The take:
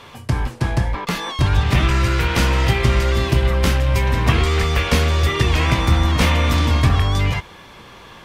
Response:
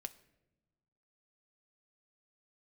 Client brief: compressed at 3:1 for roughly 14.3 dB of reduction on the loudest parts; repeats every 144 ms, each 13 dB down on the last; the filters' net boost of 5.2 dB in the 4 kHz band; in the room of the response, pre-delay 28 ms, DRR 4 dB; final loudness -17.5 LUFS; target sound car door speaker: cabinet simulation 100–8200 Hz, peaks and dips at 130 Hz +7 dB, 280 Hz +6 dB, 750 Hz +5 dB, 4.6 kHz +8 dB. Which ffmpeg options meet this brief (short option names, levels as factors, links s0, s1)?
-filter_complex "[0:a]equalizer=f=4000:t=o:g=3.5,acompressor=threshold=0.0282:ratio=3,aecho=1:1:144|288|432:0.224|0.0493|0.0108,asplit=2[s0][s1];[1:a]atrim=start_sample=2205,adelay=28[s2];[s1][s2]afir=irnorm=-1:irlink=0,volume=1[s3];[s0][s3]amix=inputs=2:normalize=0,highpass=100,equalizer=f=130:t=q:w=4:g=7,equalizer=f=280:t=q:w=4:g=6,equalizer=f=750:t=q:w=4:g=5,equalizer=f=4600:t=q:w=4:g=8,lowpass=f=8200:w=0.5412,lowpass=f=8200:w=1.3066,volume=3.76"